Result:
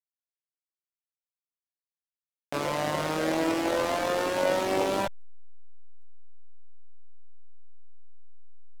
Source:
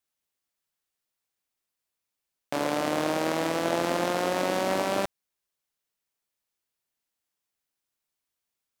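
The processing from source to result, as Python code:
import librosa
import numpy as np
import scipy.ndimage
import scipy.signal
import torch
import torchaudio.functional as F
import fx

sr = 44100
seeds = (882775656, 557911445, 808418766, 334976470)

y = fx.backlash(x, sr, play_db=-36.5)
y = fx.chorus_voices(y, sr, voices=6, hz=0.38, base_ms=20, depth_ms=1.7, mix_pct=50)
y = F.gain(torch.from_numpy(y), 3.0).numpy()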